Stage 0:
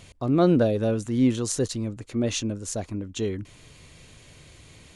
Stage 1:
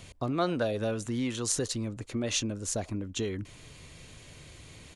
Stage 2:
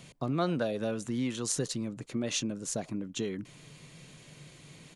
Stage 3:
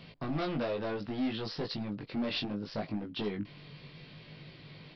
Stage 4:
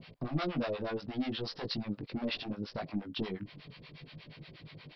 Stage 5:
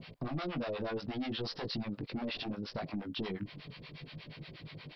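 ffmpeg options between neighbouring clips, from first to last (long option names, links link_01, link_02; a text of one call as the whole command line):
ffmpeg -i in.wav -filter_complex "[0:a]acrossover=split=740|810[link_01][link_02][link_03];[link_01]acompressor=threshold=-30dB:ratio=6[link_04];[link_02]aecho=1:1:83:0.188[link_05];[link_04][link_05][link_03]amix=inputs=3:normalize=0" out.wav
ffmpeg -i in.wav -af "lowshelf=frequency=110:width_type=q:width=3:gain=-9,volume=-2.5dB" out.wav
ffmpeg -i in.wav -af "aresample=11025,asoftclip=type=hard:threshold=-31.5dB,aresample=44100,flanger=delay=18.5:depth=2.3:speed=0.67,volume=4.5dB" out.wav
ffmpeg -i in.wav -filter_complex "[0:a]acrossover=split=600[link_01][link_02];[link_01]aeval=exprs='val(0)*(1-1/2+1/2*cos(2*PI*8.4*n/s))':channel_layout=same[link_03];[link_02]aeval=exprs='val(0)*(1-1/2-1/2*cos(2*PI*8.4*n/s))':channel_layout=same[link_04];[link_03][link_04]amix=inputs=2:normalize=0,volume=3.5dB" out.wav
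ffmpeg -i in.wav -af "alimiter=level_in=8.5dB:limit=-24dB:level=0:latency=1:release=22,volume=-8.5dB,volume=2.5dB" out.wav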